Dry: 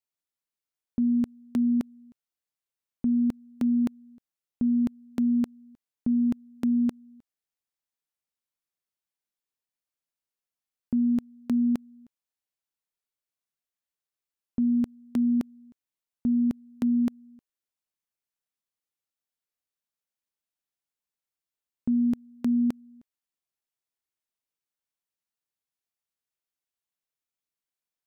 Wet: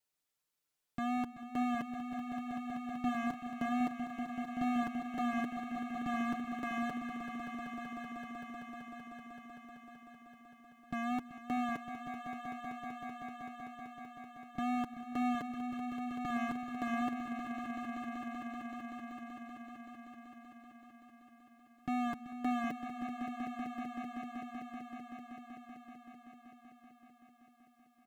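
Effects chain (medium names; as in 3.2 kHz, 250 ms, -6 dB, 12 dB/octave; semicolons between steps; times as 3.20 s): hard clipper -36 dBFS, distortion -7 dB; wow and flutter 54 cents; comb 6.7 ms, depth 61%; on a send: echo with a slow build-up 191 ms, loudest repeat 5, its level -11 dB; on the sum: trim +3.5 dB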